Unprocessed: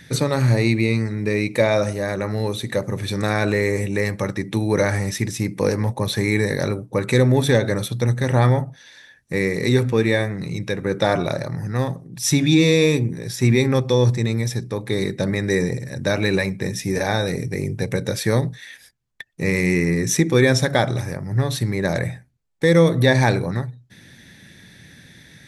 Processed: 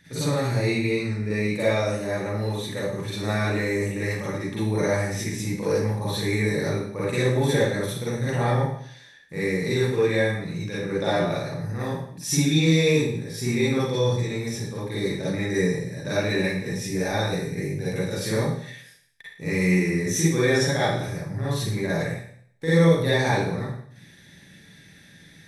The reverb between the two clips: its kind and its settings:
four-comb reverb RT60 0.61 s, DRR −9.5 dB
level −13.5 dB

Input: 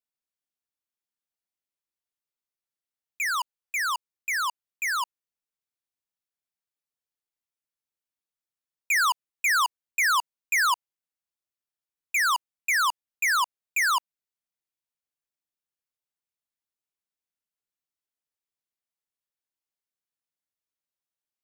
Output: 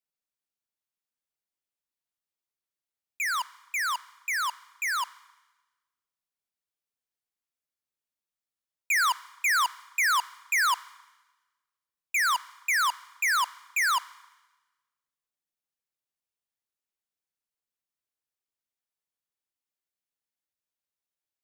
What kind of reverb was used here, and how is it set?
four-comb reverb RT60 1.2 s, combs from 29 ms, DRR 20 dB
level −1.5 dB

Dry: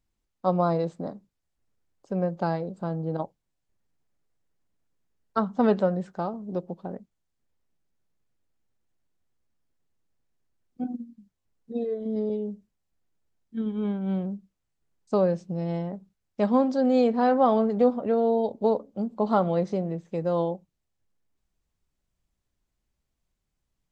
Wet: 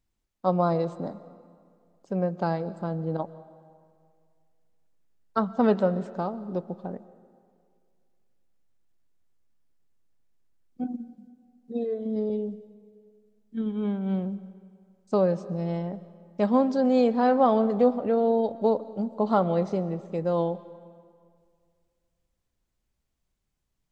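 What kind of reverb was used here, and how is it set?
comb and all-pass reverb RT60 2.1 s, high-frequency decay 0.75×, pre-delay 90 ms, DRR 16.5 dB

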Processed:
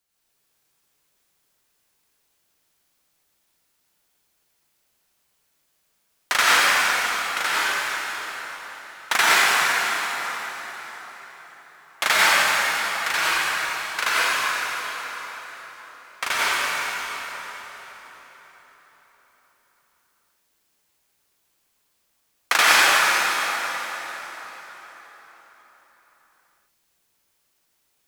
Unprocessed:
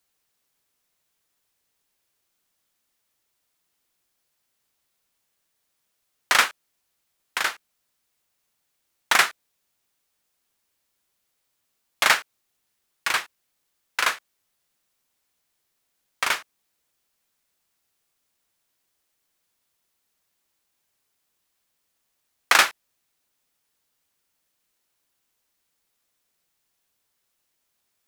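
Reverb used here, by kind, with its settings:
dense smooth reverb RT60 4.7 s, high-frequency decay 0.75×, pre-delay 75 ms, DRR −9.5 dB
level −3.5 dB

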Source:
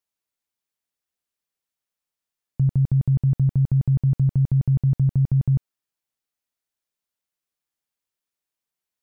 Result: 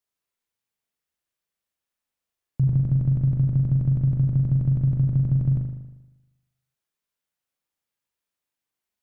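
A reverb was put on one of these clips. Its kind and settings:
spring reverb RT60 1 s, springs 39 ms, chirp 40 ms, DRR 0.5 dB
level −1 dB

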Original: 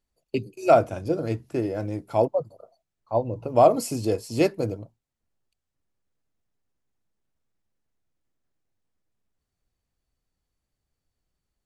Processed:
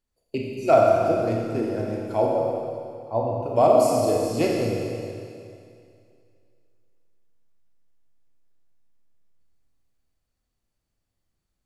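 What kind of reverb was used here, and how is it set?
four-comb reverb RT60 2.4 s, combs from 27 ms, DRR −2 dB
level −2.5 dB

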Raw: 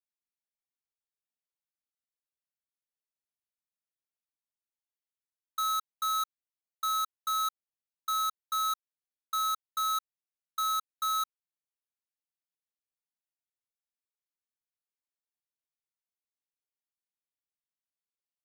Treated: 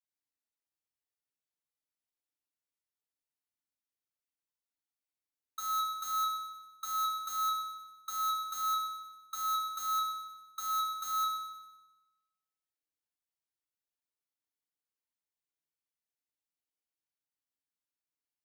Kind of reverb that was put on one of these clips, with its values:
feedback delay network reverb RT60 1.1 s, low-frequency decay 1.2×, high-frequency decay 0.9×, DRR −1 dB
level −6 dB

